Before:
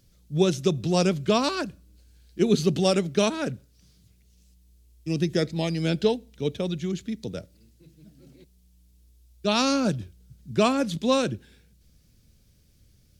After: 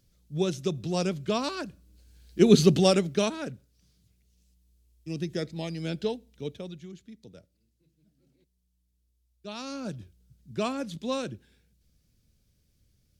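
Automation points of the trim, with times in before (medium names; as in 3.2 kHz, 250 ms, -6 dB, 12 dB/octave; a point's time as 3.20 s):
1.60 s -6 dB
2.59 s +4.5 dB
3.51 s -7.5 dB
6.42 s -7.5 dB
6.96 s -16 dB
9.62 s -16 dB
10.02 s -8.5 dB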